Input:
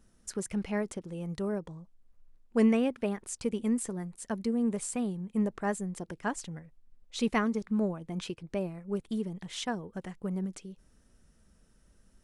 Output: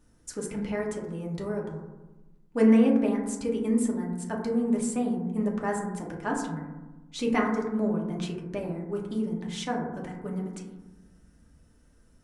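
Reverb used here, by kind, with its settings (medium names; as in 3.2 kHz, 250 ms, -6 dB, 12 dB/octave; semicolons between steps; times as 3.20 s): FDN reverb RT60 1.1 s, low-frequency decay 1.45×, high-frequency decay 0.25×, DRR -2 dB; trim -1 dB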